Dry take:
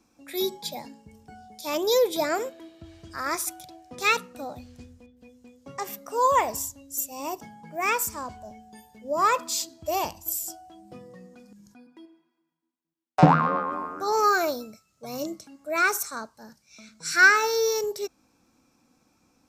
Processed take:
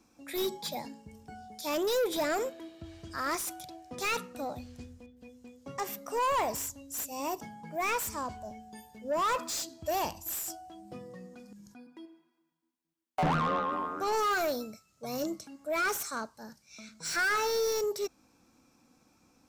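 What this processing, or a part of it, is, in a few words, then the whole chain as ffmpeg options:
saturation between pre-emphasis and de-emphasis: -af "highshelf=f=3100:g=9,asoftclip=type=tanh:threshold=0.0596,highshelf=f=3100:g=-9"

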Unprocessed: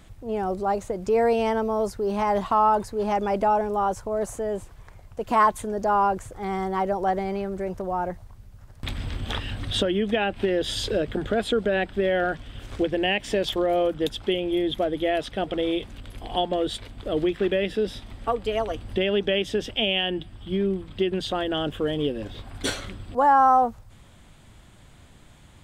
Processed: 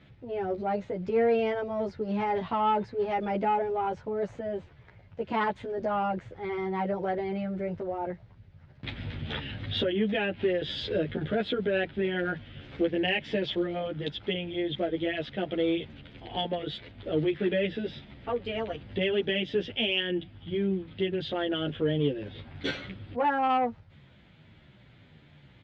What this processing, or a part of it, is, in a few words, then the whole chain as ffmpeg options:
barber-pole flanger into a guitar amplifier: -filter_complex "[0:a]asplit=2[s0][s1];[s1]adelay=11,afreqshift=-1.5[s2];[s0][s2]amix=inputs=2:normalize=1,asoftclip=type=tanh:threshold=0.188,highpass=84,equalizer=f=150:t=q:w=4:g=6,equalizer=f=730:t=q:w=4:g=-4,equalizer=f=1100:t=q:w=4:g=-8,equalizer=f=2100:t=q:w=4:g=3,lowpass=f=3900:w=0.5412,lowpass=f=3900:w=1.3066"

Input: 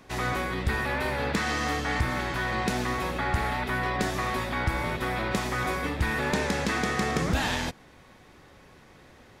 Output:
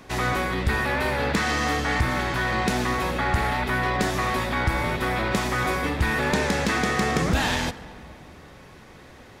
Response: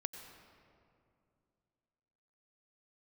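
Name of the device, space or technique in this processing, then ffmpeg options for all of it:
saturated reverb return: -filter_complex "[0:a]asplit=2[s0][s1];[1:a]atrim=start_sample=2205[s2];[s1][s2]afir=irnorm=-1:irlink=0,asoftclip=type=tanh:threshold=0.02,volume=0.631[s3];[s0][s3]amix=inputs=2:normalize=0,volume=1.33"

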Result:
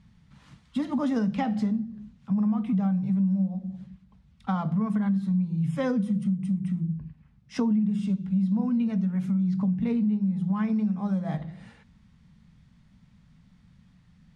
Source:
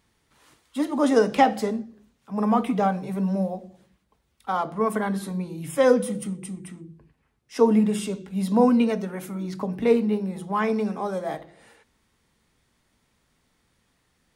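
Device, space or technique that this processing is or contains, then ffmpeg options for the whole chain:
jukebox: -af "lowpass=5400,lowshelf=f=260:t=q:w=3:g=12,acompressor=threshold=0.0631:ratio=6"

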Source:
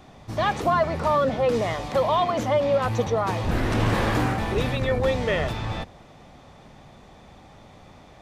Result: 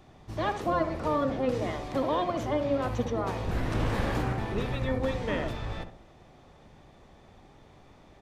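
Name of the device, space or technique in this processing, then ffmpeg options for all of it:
octave pedal: -filter_complex "[0:a]asettb=1/sr,asplit=3[s0][s1][s2];[s0]atrim=end=4.224[s3];[s1]atrim=start=4.22:end=4.73,asetpts=PTS-STARTPTS,afade=t=in:d=0.004:c=qsin,afade=t=out:st=0.506:d=0.004:c=qsin,highshelf=f=5900:g=-4.5[s4];[s2]atrim=start=4.726[s5];[s3][s4]acrossfade=d=0.004:c1=hsin:c2=qsin[s6];[s6][s5]acrossfade=d=0.004:c1=qsin:c2=hsin,asplit=2[s7][s8];[s8]adelay=65,lowpass=f=1200:p=1,volume=0.447,asplit=2[s9][s10];[s10]adelay=65,lowpass=f=1200:p=1,volume=0.42,asplit=2[s11][s12];[s12]adelay=65,lowpass=f=1200:p=1,volume=0.42,asplit=2[s13][s14];[s14]adelay=65,lowpass=f=1200:p=1,volume=0.42,asplit=2[s15][s16];[s16]adelay=65,lowpass=f=1200:p=1,volume=0.42[s17];[s7][s9][s11][s13][s15][s17]amix=inputs=6:normalize=0,asplit=2[s18][s19];[s19]asetrate=22050,aresample=44100,atempo=2,volume=0.708[s20];[s18][s20]amix=inputs=2:normalize=0,volume=0.376"

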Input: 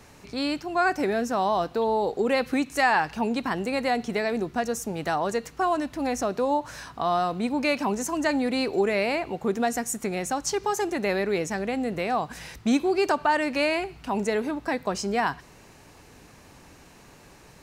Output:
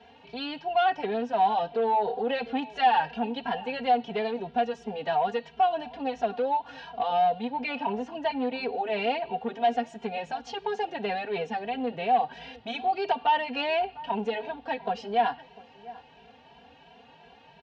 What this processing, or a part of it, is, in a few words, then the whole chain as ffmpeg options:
barber-pole flanger into a guitar amplifier: -filter_complex "[0:a]asettb=1/sr,asplit=3[s0][s1][s2];[s0]atrim=end=7.474[s3];[s1]atrim=start=7.47:end=8.86,asetpts=PTS-STARTPTS,afade=t=in:d=0.004:c=qsin,afade=t=out:st=1.386:d=0.004:c=qsin,highshelf=f=5200:g=-9[s4];[s2]atrim=start=8.856[s5];[s3][s4]acrossfade=d=0.004:c1=hsin:c2=qsin[s6];[s6][s5]acrossfade=d=0.004:c1=qsin:c2=hsin,aecho=1:1:4.3:0.68,asplit=2[s7][s8];[s8]adelay=699.7,volume=0.0794,highshelf=f=4000:g=-15.7[s9];[s7][s9]amix=inputs=2:normalize=0,asplit=2[s10][s11];[s11]adelay=2.6,afreqshift=2.9[s12];[s10][s12]amix=inputs=2:normalize=1,asoftclip=type=tanh:threshold=0.1,highpass=110,equalizer=f=190:t=q:w=4:g=-7,equalizer=f=310:t=q:w=4:g=-10,equalizer=f=800:t=q:w=4:g=10,equalizer=f=1200:t=q:w=4:g=-10,equalizer=f=2100:t=q:w=4:g=-6,equalizer=f=3000:t=q:w=4:g=8,lowpass=f=3600:w=0.5412,lowpass=f=3600:w=1.3066"

